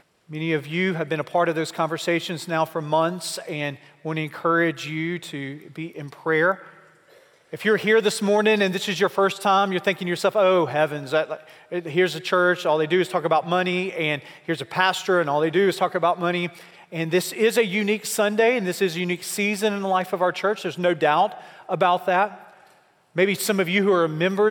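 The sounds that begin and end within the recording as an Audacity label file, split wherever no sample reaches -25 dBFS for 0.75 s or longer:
7.540000	22.270000	sound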